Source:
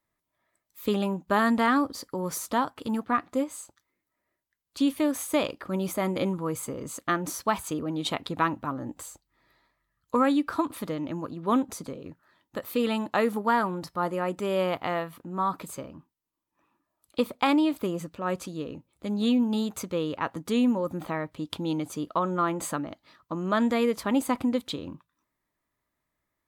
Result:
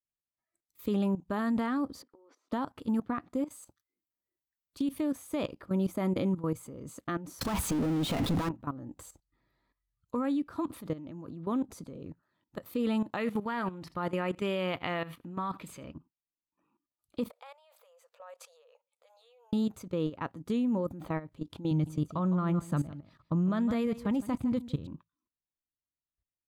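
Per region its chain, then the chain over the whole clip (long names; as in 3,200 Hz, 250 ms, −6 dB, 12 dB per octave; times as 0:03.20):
0:02.02–0:02.52: Chebyshev high-pass filter 250 Hz, order 6 + downward compressor 12 to 1, threshold −43 dBFS + high-frequency loss of the air 200 metres
0:03.47–0:04.97: high-shelf EQ 11,000 Hz +8 dB + downward compressor 3 to 1, threshold −27 dBFS + notch filter 7,000 Hz, Q 14
0:07.41–0:08.49: notch filter 360 Hz, Q 7.6 + power curve on the samples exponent 0.35
0:13.17–0:15.94: parametric band 2,600 Hz +11.5 dB 1.7 octaves + single-tap delay 80 ms −23 dB
0:17.30–0:19.53: downward compressor 4 to 1, threshold −37 dBFS + linear-phase brick-wall high-pass 460 Hz
0:21.71–0:24.87: low shelf with overshoot 210 Hz +7 dB, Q 1.5 + single-tap delay 159 ms −12 dB
whole clip: noise reduction from a noise print of the clip's start 12 dB; output level in coarse steps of 15 dB; low-shelf EQ 390 Hz +11.5 dB; level −5.5 dB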